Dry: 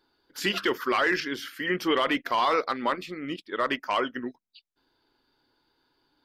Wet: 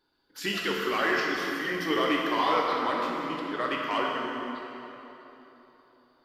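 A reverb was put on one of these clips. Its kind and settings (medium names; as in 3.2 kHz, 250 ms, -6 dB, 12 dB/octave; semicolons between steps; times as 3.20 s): plate-style reverb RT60 3.5 s, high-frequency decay 0.75×, DRR -2.5 dB; trim -5 dB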